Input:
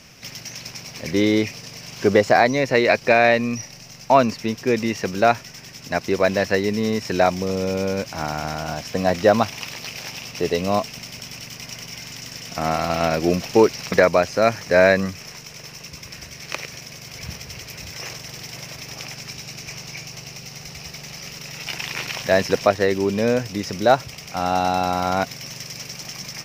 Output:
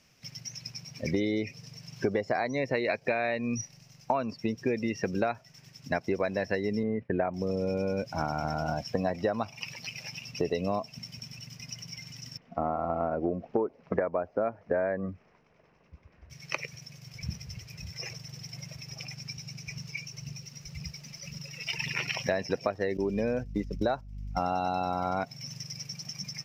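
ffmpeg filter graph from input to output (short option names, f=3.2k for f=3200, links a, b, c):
-filter_complex "[0:a]asettb=1/sr,asplit=3[a][b][c];[a]atrim=end=6.834[d];[b]atrim=start=6.83:end=7.34,asetpts=PTS-STARTPTS,afade=t=in:d=0.004:c=qsin,afade=t=out:st=0.506:d=0.004:c=qsin,lowpass=f=2.3k:w=0.5412,lowpass=f=2.3k:w=1.3066,agate=range=-33dB:threshold=-32dB:ratio=3:release=100:detection=peak,equalizer=f=1.4k:t=o:w=1.5:g=-2[e];[c]atrim=start=7.336[f];[d][e]acrossfade=d=0.004:c1=hsin:c2=qsin[g];[g][f]acrossfade=d=0.004:c1=qsin:c2=hsin,asettb=1/sr,asplit=3[h][i][j];[h]atrim=end=12.374[k];[i]atrim=start=12.37:end=16.3,asetpts=PTS-STARTPTS,afade=t=in:d=0.004:c=qsin,afade=t=out:st=3.926:d=0.004:c=qsin,lowpass=1.3k,equalizer=f=130:w=2.3:g=-10.5[l];[j]atrim=start=16.296[m];[k][l]acrossfade=d=0.004:c1=hsin:c2=qsin[n];[n][m]acrossfade=d=0.004:c1=qsin:c2=hsin,asettb=1/sr,asplit=3[o][p][q];[o]atrim=end=19.774[r];[p]atrim=start=19.77:end=21.93,asetpts=PTS-STARTPTS,afade=t=in:d=0.004:c=qsin,afade=t=out:st=2.156:d=0.004:c=qsin,bandreject=f=760:w=8.5,aphaser=in_gain=1:out_gain=1:delay=4.3:decay=0.39:speed=1.9:type=triangular,asoftclip=type=hard:threshold=-22dB[s];[q]atrim=start=21.926[t];[r][s]acrossfade=d=0.004:c1=hsin:c2=qsin[u];[u][t]acrossfade=d=0.004:c1=qsin:c2=hsin,asettb=1/sr,asplit=3[v][w][x];[v]atrim=end=22.974[y];[w]atrim=start=22.97:end=24.39,asetpts=PTS-STARTPTS,afade=t=in:d=0.004:c=qsin,afade=t=out:st=1.416:d=0.004:c=qsin,agate=range=-17dB:threshold=-28dB:ratio=16:release=100:detection=peak,aeval=exprs='val(0)+0.0178*(sin(2*PI*50*n/s)+sin(2*PI*2*50*n/s)/2+sin(2*PI*3*50*n/s)/3+sin(2*PI*4*50*n/s)/4+sin(2*PI*5*50*n/s)/5)':c=same[z];[x]atrim=start=24.386[aa];[y][z]acrossfade=d=0.004:c1=hsin:c2=qsin[ab];[ab][aa]acrossfade=d=0.004:c1=qsin:c2=hsin,afftdn=nr=17:nf=-29,acompressor=threshold=-25dB:ratio=12"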